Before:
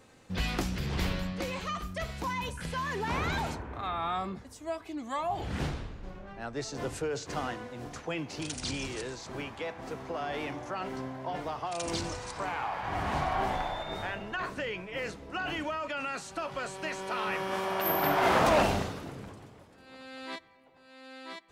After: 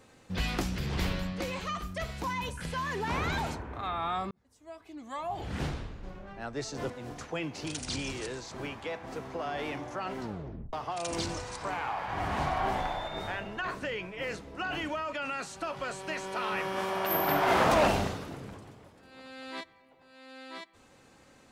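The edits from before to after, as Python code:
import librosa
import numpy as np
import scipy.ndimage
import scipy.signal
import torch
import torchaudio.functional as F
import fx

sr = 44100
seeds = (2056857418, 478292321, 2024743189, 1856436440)

y = fx.edit(x, sr, fx.fade_in_span(start_s=4.31, length_s=1.43),
    fx.cut(start_s=6.9, length_s=0.75),
    fx.tape_stop(start_s=10.95, length_s=0.53), tone=tone)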